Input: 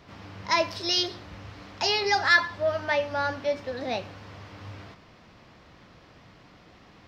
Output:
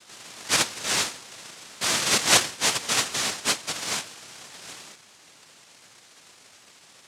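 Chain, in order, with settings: noise vocoder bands 1; gain +1 dB

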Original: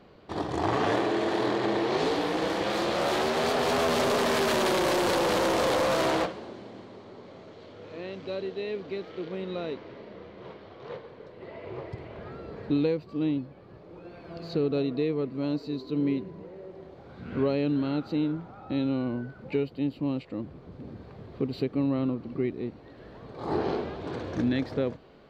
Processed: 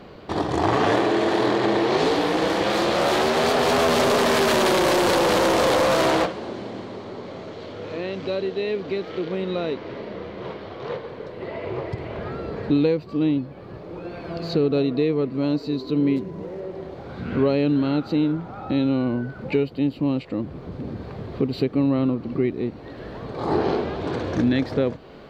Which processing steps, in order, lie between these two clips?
16.16–16.61 median filter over 15 samples; in parallel at +1.5 dB: compressor, threshold -39 dBFS, peak gain reduction 16.5 dB; on the sum: gain +4.5 dB

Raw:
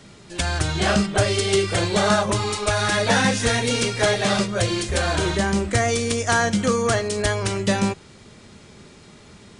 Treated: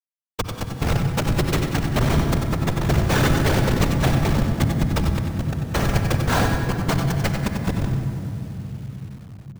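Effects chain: HPF 500 Hz 24 dB/oct; high shelf 3400 Hz +7.5 dB; comb 4.4 ms, depth 66%; dynamic EQ 660 Hz, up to -7 dB, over -34 dBFS, Q 1.8; in parallel at -9.5 dB: companded quantiser 2-bit; on the sum: Schmitt trigger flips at -9.5 dBFS; whisperiser; feedback echo 90 ms, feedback 36%, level -11 dB; on a send at -6.5 dB: reverb RT60 3.6 s, pre-delay 47 ms; on the sum: careless resampling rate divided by 2×, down filtered, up hold; lo-fi delay 96 ms, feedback 55%, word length 7-bit, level -8 dB

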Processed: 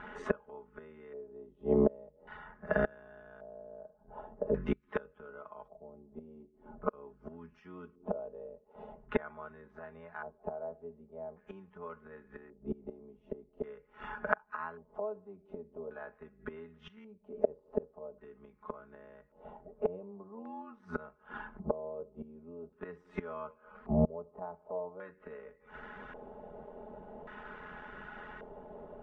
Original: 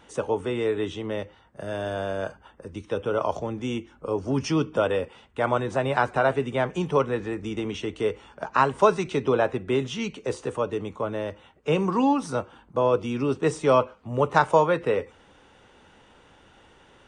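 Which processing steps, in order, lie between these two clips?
flipped gate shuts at -23 dBFS, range -31 dB; granular stretch 1.7×, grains 23 ms; LFO low-pass square 0.44 Hz 650–1600 Hz; gain +6 dB

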